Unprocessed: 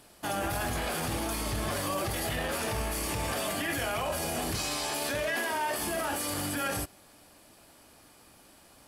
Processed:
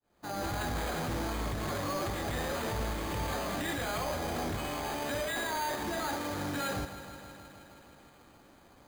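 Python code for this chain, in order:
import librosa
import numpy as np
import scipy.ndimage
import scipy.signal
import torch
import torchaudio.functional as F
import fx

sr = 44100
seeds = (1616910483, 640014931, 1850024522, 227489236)

p1 = fx.fade_in_head(x, sr, length_s=0.56)
p2 = fx.high_shelf(p1, sr, hz=4500.0, db=-11.5)
p3 = fx.notch(p2, sr, hz=640.0, q=16.0)
p4 = (np.mod(10.0 ** (29.0 / 20.0) * p3 + 1.0, 2.0) - 1.0) / 10.0 ** (29.0 / 20.0)
p5 = p3 + (p4 * librosa.db_to_amplitude(-6.0))
p6 = np.repeat(scipy.signal.resample_poly(p5, 1, 8), 8)[:len(p5)]
p7 = fx.echo_crushed(p6, sr, ms=158, feedback_pct=80, bits=10, wet_db=-13.0)
y = p7 * librosa.db_to_amplitude(-2.5)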